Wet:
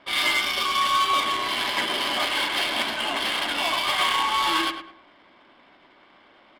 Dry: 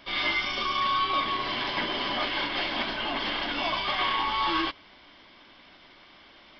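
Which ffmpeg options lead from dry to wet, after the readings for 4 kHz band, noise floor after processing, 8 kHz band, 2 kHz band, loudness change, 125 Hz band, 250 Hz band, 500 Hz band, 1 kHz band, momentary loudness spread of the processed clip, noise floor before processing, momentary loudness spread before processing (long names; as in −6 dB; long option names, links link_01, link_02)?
+5.5 dB, −56 dBFS, can't be measured, +4.5 dB, +4.5 dB, −3.0 dB, 0.0 dB, +2.5 dB, +4.0 dB, 4 LU, −54 dBFS, 3 LU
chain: -filter_complex "[0:a]aemphasis=mode=production:type=bsi,adynamicsmooth=sensitivity=5:basefreq=1500,asplit=2[link_01][link_02];[link_02]adelay=104,lowpass=frequency=2400:poles=1,volume=-8dB,asplit=2[link_03][link_04];[link_04]adelay=104,lowpass=frequency=2400:poles=1,volume=0.34,asplit=2[link_05][link_06];[link_06]adelay=104,lowpass=frequency=2400:poles=1,volume=0.34,asplit=2[link_07][link_08];[link_08]adelay=104,lowpass=frequency=2400:poles=1,volume=0.34[link_09];[link_03][link_05][link_07][link_09]amix=inputs=4:normalize=0[link_10];[link_01][link_10]amix=inputs=2:normalize=0,volume=3dB"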